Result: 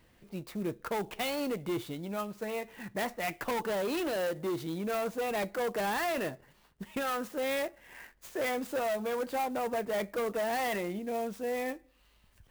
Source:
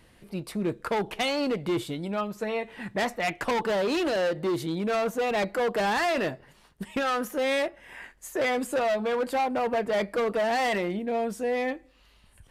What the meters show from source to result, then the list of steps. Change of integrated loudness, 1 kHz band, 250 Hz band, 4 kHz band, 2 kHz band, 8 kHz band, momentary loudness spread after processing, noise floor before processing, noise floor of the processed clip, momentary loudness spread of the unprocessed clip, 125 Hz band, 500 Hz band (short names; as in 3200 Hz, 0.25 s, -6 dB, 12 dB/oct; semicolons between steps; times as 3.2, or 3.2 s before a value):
-6.0 dB, -6.0 dB, -6.0 dB, -7.0 dB, -6.5 dB, -2.5 dB, 8 LU, -59 dBFS, -65 dBFS, 8 LU, -6.0 dB, -6.0 dB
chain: clock jitter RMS 0.027 ms; gain -6 dB